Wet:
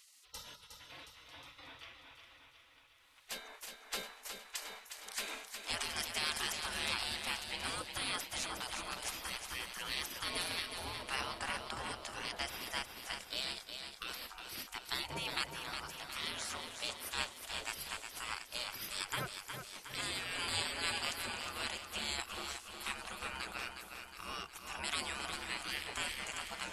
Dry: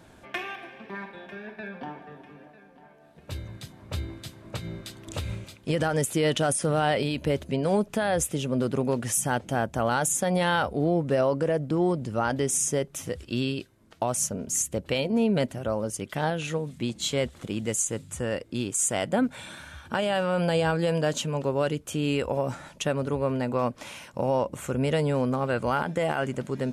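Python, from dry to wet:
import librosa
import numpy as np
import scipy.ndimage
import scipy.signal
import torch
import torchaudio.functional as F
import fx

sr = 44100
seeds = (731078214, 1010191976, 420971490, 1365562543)

y = fx.spec_gate(x, sr, threshold_db=-25, keep='weak')
y = fx.echo_feedback(y, sr, ms=362, feedback_pct=57, wet_db=-7.0)
y = y * librosa.db_to_amplitude(4.5)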